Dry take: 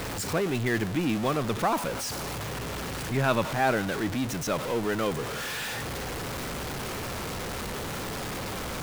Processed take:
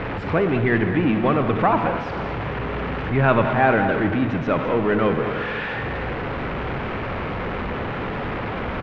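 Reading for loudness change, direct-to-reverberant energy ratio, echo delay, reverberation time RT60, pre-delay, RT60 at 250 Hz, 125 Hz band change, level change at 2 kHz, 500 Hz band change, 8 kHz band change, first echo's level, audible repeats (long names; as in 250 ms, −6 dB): +7.5 dB, 6.5 dB, 208 ms, 2.1 s, 37 ms, 2.3 s, +8.0 dB, +7.5 dB, +8.0 dB, below −25 dB, −11.5 dB, 1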